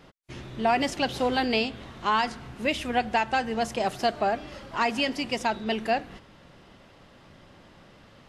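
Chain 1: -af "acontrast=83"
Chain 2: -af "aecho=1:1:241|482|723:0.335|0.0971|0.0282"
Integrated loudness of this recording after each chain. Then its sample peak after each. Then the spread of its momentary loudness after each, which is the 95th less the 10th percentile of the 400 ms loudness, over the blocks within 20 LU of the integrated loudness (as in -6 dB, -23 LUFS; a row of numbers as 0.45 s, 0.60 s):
-20.5 LUFS, -27.0 LUFS; -6.5 dBFS, -12.0 dBFS; 7 LU, 8 LU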